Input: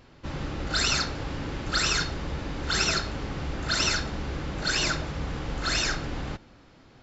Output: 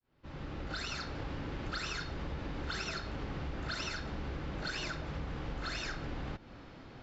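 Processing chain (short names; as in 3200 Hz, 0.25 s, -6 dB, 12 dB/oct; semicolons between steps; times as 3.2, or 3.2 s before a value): opening faded in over 1.84 s; Bessel low-pass 3900 Hz, order 2; compressor 6:1, threshold -40 dBFS, peak gain reduction 16 dB; gain +3.5 dB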